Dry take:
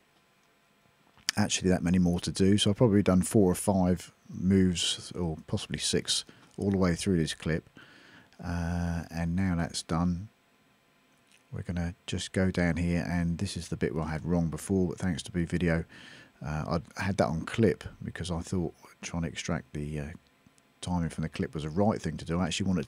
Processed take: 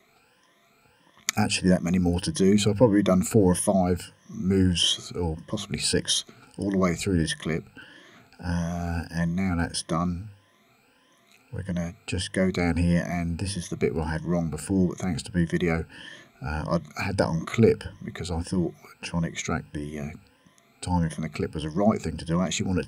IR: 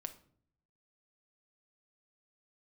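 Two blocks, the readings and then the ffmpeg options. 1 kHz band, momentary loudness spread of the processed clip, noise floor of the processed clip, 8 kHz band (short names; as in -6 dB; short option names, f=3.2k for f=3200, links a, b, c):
+4.5 dB, 13 LU, -62 dBFS, +4.5 dB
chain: -af "afftfilt=real='re*pow(10,15/40*sin(2*PI*(1.2*log(max(b,1)*sr/1024/100)/log(2)-(1.6)*(pts-256)/sr)))':imag='im*pow(10,15/40*sin(2*PI*(1.2*log(max(b,1)*sr/1024/100)/log(2)-(1.6)*(pts-256)/sr)))':win_size=1024:overlap=0.75,bandreject=f=50:t=h:w=6,bandreject=f=100:t=h:w=6,bandreject=f=150:t=h:w=6,bandreject=f=200:t=h:w=6,volume=2dB"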